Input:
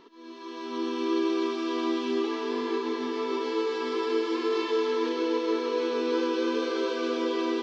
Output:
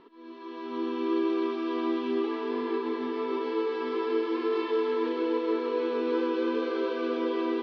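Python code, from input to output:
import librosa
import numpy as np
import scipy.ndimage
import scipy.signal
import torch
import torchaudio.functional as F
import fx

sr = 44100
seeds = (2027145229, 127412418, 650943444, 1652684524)

y = fx.air_absorb(x, sr, metres=280.0)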